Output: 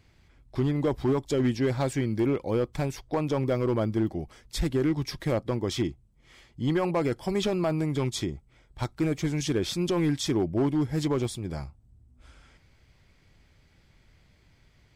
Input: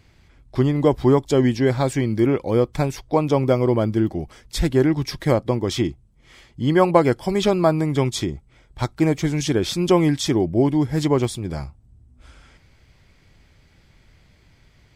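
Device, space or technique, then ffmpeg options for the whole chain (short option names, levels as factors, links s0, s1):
limiter into clipper: -af "alimiter=limit=0.355:level=0:latency=1:release=20,asoftclip=type=hard:threshold=0.224,volume=0.501"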